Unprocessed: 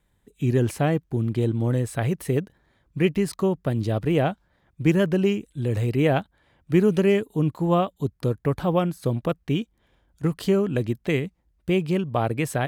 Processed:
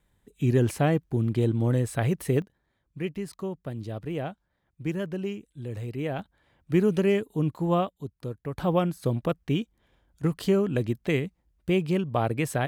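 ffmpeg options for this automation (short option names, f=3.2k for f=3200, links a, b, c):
-af "asetnsamples=n=441:p=0,asendcmd='2.42 volume volume -10.5dB;6.19 volume volume -3.5dB;7.89 volume volume -10.5dB;8.58 volume volume -2dB',volume=-1dB"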